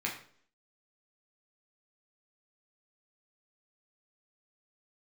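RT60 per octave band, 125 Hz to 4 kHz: 0.55, 0.60, 0.60, 0.50, 0.45, 0.45 seconds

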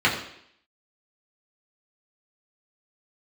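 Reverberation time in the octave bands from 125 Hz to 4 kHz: 0.60, 0.70, 0.70, 0.70, 0.70, 0.75 seconds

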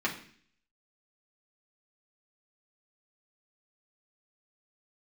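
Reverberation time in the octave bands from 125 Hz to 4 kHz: 0.65, 0.65, 0.55, 0.50, 0.60, 0.60 seconds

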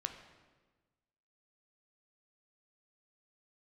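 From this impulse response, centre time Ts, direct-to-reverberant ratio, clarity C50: 20 ms, 6.0 dB, 8.5 dB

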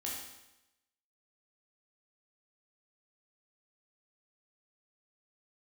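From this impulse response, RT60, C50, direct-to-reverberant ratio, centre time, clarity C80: 0.90 s, 1.5 dB, −4.0 dB, 59 ms, 4.5 dB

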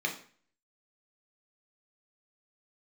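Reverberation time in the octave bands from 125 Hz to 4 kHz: 0.50, 0.50, 0.45, 0.45, 0.45, 0.40 seconds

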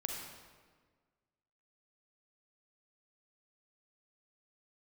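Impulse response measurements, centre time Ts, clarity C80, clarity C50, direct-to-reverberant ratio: 67 ms, 3.5 dB, 1.5 dB, 0.5 dB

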